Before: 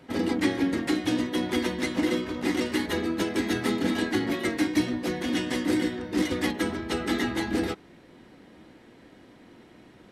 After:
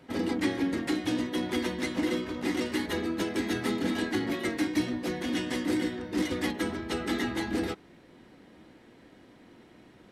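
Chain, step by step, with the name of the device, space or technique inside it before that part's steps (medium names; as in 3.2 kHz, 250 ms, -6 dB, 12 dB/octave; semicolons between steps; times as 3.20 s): parallel distortion (in parallel at -12.5 dB: hard clipper -25.5 dBFS, distortion -9 dB); on the sum: trim -4.5 dB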